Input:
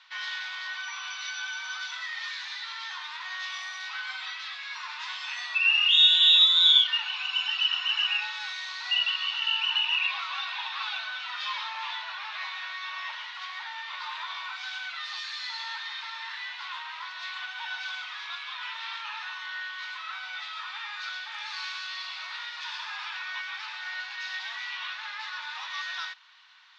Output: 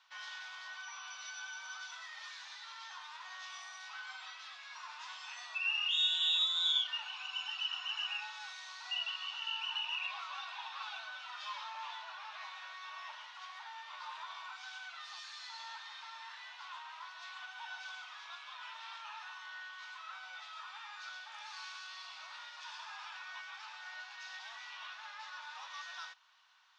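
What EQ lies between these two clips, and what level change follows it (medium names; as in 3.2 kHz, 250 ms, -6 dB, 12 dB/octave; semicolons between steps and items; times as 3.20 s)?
graphic EQ 1/2/4 kHz -4/-11/-10 dB; -1.0 dB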